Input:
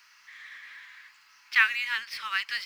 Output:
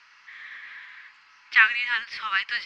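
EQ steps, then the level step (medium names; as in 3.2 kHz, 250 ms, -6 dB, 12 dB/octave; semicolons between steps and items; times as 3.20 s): distance through air 120 m; treble shelf 8.4 kHz -11 dB; +6.0 dB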